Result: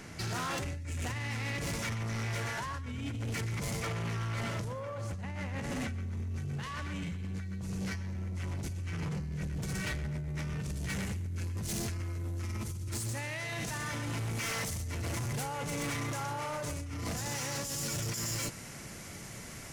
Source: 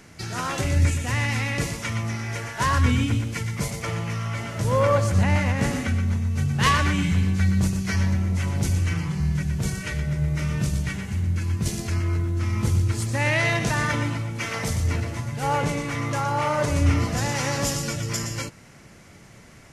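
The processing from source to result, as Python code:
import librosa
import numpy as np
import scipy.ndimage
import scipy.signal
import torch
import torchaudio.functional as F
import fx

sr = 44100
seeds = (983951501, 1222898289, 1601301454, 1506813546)

y = fx.high_shelf(x, sr, hz=5800.0, db=fx.steps((0.0, -2.0), (10.75, 6.0), (12.03, 11.5)))
y = fx.over_compress(y, sr, threshold_db=-29.0, ratio=-1.0)
y = 10.0 ** (-29.0 / 20.0) * np.tanh(y / 10.0 ** (-29.0 / 20.0))
y = y * 10.0 ** (-3.0 / 20.0)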